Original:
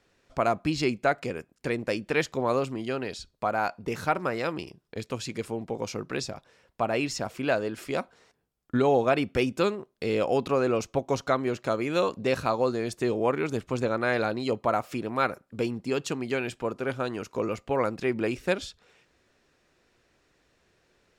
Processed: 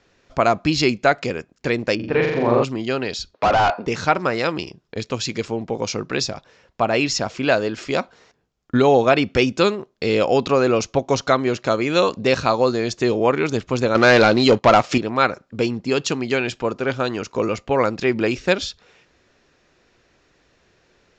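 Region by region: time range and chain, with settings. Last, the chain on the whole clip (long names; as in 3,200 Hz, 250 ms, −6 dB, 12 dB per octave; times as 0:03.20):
0:01.95–0:02.63: head-to-tape spacing loss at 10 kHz 38 dB + flutter between parallel walls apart 7.3 metres, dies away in 1.1 s
0:03.34–0:03.86: Bessel high-pass filter 400 Hz + high-frequency loss of the air 150 metres + mid-hump overdrive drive 30 dB, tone 1,000 Hz, clips at −15 dBFS
0:13.95–0:14.98: high-pass filter 74 Hz + leveller curve on the samples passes 2
whole clip: Butterworth low-pass 7,300 Hz 72 dB per octave; dynamic equaliser 4,700 Hz, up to +5 dB, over −48 dBFS, Q 0.75; level +7.5 dB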